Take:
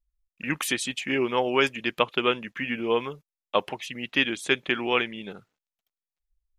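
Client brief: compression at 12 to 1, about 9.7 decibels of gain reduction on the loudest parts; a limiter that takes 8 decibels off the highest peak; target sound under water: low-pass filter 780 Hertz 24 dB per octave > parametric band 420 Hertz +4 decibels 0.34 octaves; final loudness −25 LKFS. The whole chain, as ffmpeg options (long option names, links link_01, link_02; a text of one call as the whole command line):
ffmpeg -i in.wav -af "acompressor=threshold=-27dB:ratio=12,alimiter=limit=-22dB:level=0:latency=1,lowpass=frequency=780:width=0.5412,lowpass=frequency=780:width=1.3066,equalizer=frequency=420:width_type=o:width=0.34:gain=4,volume=12.5dB" out.wav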